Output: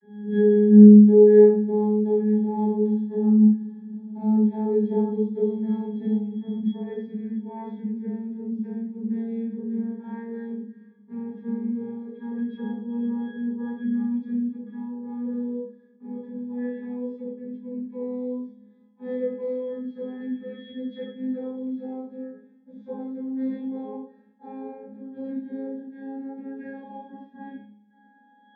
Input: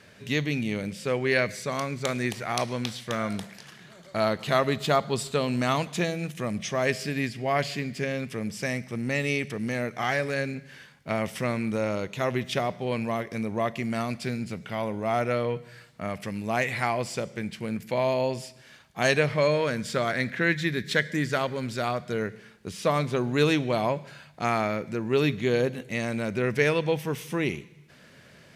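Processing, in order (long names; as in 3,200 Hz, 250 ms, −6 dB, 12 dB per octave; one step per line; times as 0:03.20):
vocoder with a gliding carrier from G#3, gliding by +5 semitones
dynamic equaliser 180 Hz, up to −6 dB, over −39 dBFS, Q 0.76
resonances in every octave G#, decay 0.48 s
convolution reverb, pre-delay 3 ms, DRR −9.5 dB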